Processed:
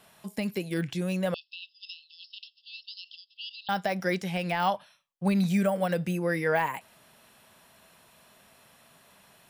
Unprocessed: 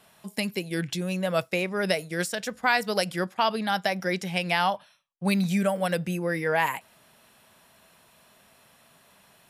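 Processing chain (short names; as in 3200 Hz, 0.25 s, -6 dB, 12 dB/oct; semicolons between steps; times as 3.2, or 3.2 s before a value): de-esser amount 90%; 1.34–3.69 brick-wall FIR band-pass 2600–5400 Hz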